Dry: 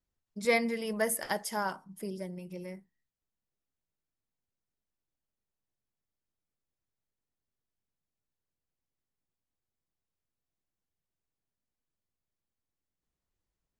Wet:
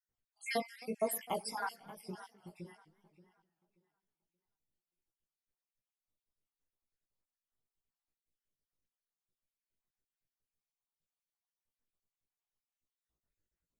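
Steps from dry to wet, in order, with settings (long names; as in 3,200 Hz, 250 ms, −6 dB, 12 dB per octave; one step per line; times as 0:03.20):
time-frequency cells dropped at random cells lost 69%
0:02.31–0:02.75: all-pass dispersion highs, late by 59 ms, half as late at 1,400 Hz
tape delay 579 ms, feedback 26%, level −15 dB, low-pass 4,300 Hz
chorus effect 0.86 Hz, delay 16.5 ms, depth 2.4 ms
feedback echo with a swinging delay time 259 ms, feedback 44%, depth 201 cents, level −21.5 dB
level +1.5 dB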